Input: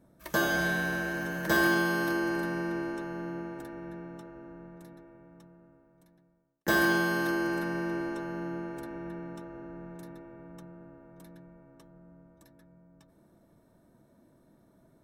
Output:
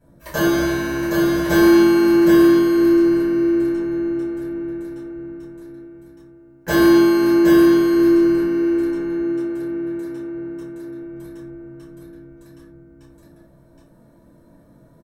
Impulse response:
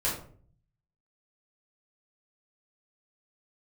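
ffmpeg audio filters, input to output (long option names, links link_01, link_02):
-filter_complex "[0:a]asettb=1/sr,asplit=3[link_01][link_02][link_03];[link_01]atrim=end=8.424[link_04];[link_02]atrim=start=8.42:end=11.02,asetpts=PTS-STARTPTS,afade=type=in:duration=0.004:curve=qsin,afade=type=out:start_time=2.596:duration=0.004:curve=qsin,highpass=frequency=140:poles=1[link_05];[link_03]atrim=start=11.016[link_06];[link_04][link_05]acrossfade=duration=0.004:curve1=hsin:curve2=qsin[link_07];[link_07][link_06]acrossfade=duration=0.004:curve1=qsin:curve2=hsin,aecho=1:1:769:0.708[link_08];[1:a]atrim=start_sample=2205,afade=type=out:start_time=0.19:duration=0.01,atrim=end_sample=8820[link_09];[link_08][link_09]afir=irnorm=-1:irlink=0"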